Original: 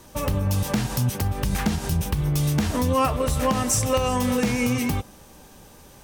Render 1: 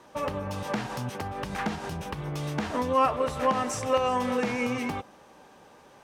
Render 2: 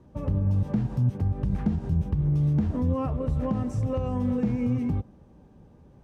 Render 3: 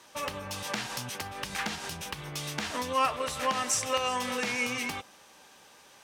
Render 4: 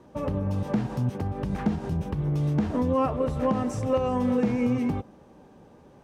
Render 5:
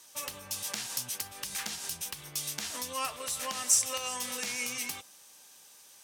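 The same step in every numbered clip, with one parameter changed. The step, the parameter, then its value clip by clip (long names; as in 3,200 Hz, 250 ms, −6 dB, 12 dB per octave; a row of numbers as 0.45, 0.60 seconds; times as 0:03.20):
resonant band-pass, frequency: 950, 120, 2,500, 320, 7,400 Hertz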